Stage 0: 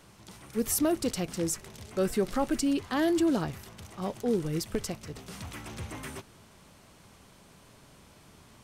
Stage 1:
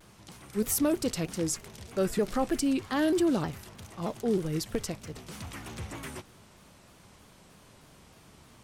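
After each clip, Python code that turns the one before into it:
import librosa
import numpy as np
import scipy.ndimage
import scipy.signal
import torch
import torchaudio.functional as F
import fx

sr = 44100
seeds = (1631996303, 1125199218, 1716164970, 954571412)

y = fx.vibrato_shape(x, sr, shape='saw_down', rate_hz=3.2, depth_cents=160.0)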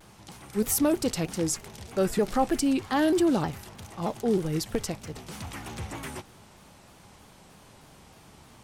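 y = fx.peak_eq(x, sr, hz=820.0, db=5.5, octaves=0.27)
y = F.gain(torch.from_numpy(y), 2.5).numpy()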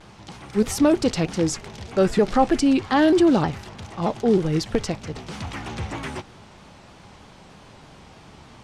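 y = scipy.signal.sosfilt(scipy.signal.butter(2, 5400.0, 'lowpass', fs=sr, output='sos'), x)
y = F.gain(torch.from_numpy(y), 6.5).numpy()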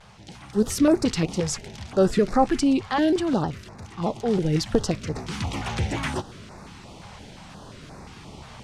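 y = fx.rider(x, sr, range_db=5, speed_s=2.0)
y = fx.filter_held_notch(y, sr, hz=5.7, low_hz=310.0, high_hz=3100.0)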